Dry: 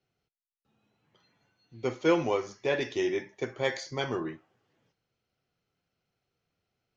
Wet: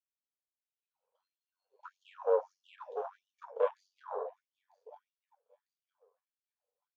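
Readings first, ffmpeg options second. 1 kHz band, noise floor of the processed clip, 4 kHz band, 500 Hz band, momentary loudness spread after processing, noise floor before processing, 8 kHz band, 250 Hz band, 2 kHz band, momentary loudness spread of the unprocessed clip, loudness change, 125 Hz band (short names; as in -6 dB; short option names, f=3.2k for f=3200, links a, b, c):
-4.5 dB, under -85 dBFS, under -25 dB, -5.0 dB, 24 LU, under -85 dBFS, n/a, under -35 dB, -20.0 dB, 10 LU, -5.0 dB, under -40 dB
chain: -filter_complex "[0:a]aeval=exprs='if(lt(val(0),0),0.708*val(0),val(0))':c=same,acrossover=split=760|1700[a][b][c];[a]acompressor=threshold=-30dB:ratio=4[d];[b]acompressor=threshold=-44dB:ratio=4[e];[c]acompressor=threshold=-48dB:ratio=4[f];[d][e][f]amix=inputs=3:normalize=0,equalizer=f=490:t=o:w=1.8:g=14.5,aecho=1:1:949|1898|2847:0.158|0.046|0.0133,aeval=exprs='(tanh(10*val(0)+0.6)-tanh(0.6))/10':c=same,afwtdn=0.0141,aeval=exprs='val(0)*sin(2*PI*47*n/s)':c=same,asplit=2[g][h];[h]alimiter=level_in=10dB:limit=-24dB:level=0:latency=1:release=307,volume=-10dB,volume=-1dB[i];[g][i]amix=inputs=2:normalize=0,equalizer=f=500:t=o:w=0.33:g=8,equalizer=f=1k:t=o:w=0.33:g=9,equalizer=f=2k:t=o:w=0.33:g=-11,flanger=delay=4:depth=2.3:regen=-68:speed=0.44:shape=sinusoidal,afftfilt=real='re*gte(b*sr/1024,390*pow(2800/390,0.5+0.5*sin(2*PI*1.6*pts/sr)))':imag='im*gte(b*sr/1024,390*pow(2800/390,0.5+0.5*sin(2*PI*1.6*pts/sr)))':win_size=1024:overlap=0.75"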